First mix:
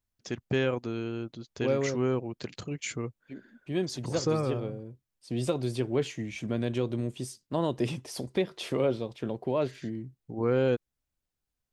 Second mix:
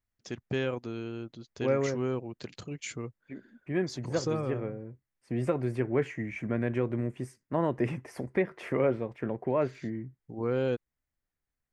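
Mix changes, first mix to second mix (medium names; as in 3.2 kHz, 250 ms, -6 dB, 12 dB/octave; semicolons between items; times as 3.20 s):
first voice -3.5 dB; second voice: add resonant high shelf 2.7 kHz -11 dB, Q 3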